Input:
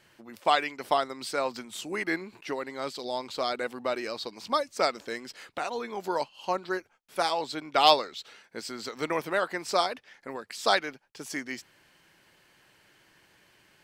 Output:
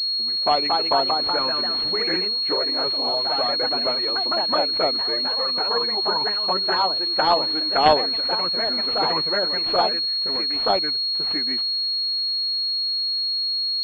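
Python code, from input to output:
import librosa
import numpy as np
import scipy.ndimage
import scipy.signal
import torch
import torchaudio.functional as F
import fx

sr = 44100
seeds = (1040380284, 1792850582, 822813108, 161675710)

y = fx.env_flanger(x, sr, rest_ms=8.9, full_db=-21.0)
y = fx.echo_pitch(y, sr, ms=281, semitones=2, count=2, db_per_echo=-3.0)
y = fx.pwm(y, sr, carrier_hz=4300.0)
y = y * 10.0 ** (7.0 / 20.0)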